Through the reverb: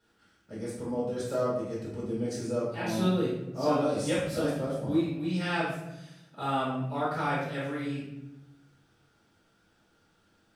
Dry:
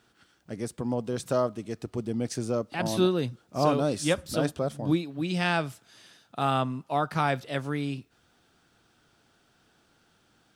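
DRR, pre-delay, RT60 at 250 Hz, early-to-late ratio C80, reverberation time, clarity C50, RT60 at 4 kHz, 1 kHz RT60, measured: −10.5 dB, 4 ms, 1.3 s, 4.0 dB, 0.95 s, 0.5 dB, 0.55 s, 0.80 s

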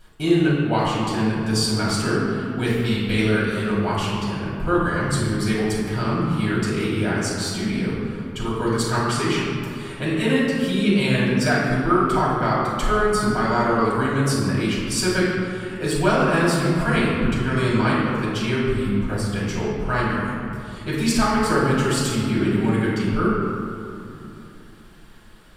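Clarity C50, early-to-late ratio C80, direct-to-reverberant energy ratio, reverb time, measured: −1.0 dB, 0.5 dB, −8.5 dB, 2.8 s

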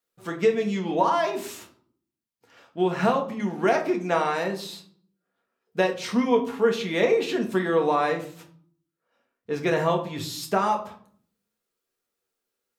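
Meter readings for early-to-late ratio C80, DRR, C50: 15.5 dB, 2.0 dB, 11.5 dB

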